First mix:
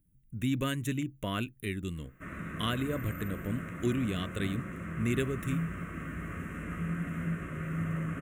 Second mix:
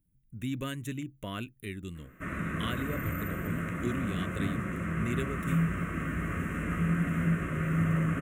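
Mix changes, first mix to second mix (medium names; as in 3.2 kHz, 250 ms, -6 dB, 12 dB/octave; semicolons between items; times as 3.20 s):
speech -4.0 dB; background +6.0 dB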